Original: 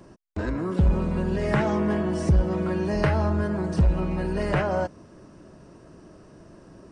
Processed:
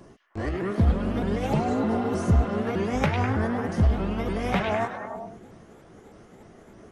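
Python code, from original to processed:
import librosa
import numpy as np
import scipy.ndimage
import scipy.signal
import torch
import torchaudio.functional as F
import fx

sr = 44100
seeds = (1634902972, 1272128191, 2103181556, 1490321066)

y = fx.pitch_ramps(x, sr, semitones=5.0, every_ms=306)
y = fx.spec_repair(y, sr, seeds[0], start_s=1.51, length_s=0.98, low_hz=940.0, high_hz=3900.0, source='after')
y = fx.echo_stepped(y, sr, ms=101, hz=3000.0, octaves=-0.7, feedback_pct=70, wet_db=-1)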